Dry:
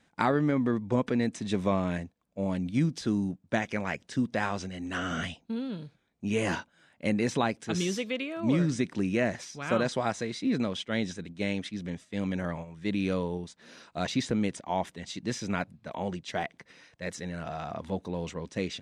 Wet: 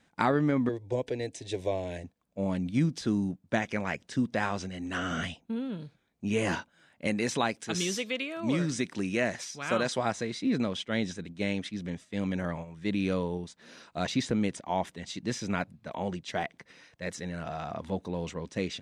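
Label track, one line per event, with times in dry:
0.690000	2.040000	fixed phaser centre 510 Hz, stages 4
5.400000	5.800000	bell 4500 Hz -12.5 dB 0.39 oct
7.070000	9.980000	tilt +1.5 dB/oct

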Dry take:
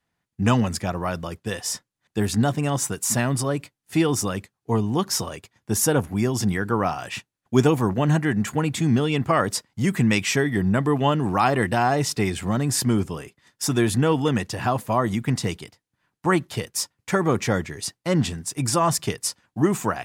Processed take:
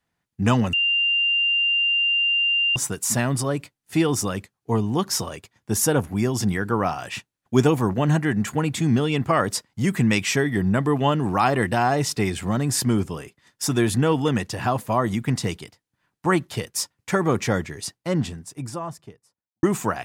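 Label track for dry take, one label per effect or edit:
0.730000	2.760000	bleep 2790 Hz -17.5 dBFS
17.530000	19.630000	studio fade out

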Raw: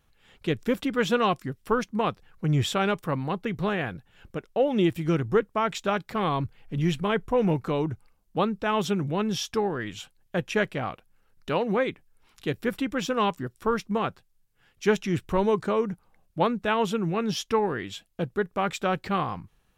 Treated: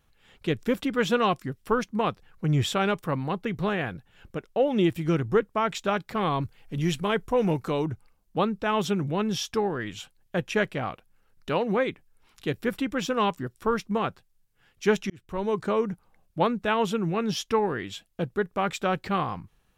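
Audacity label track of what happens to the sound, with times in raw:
6.420000	7.860000	tone controls bass -2 dB, treble +6 dB
15.100000	15.710000	fade in

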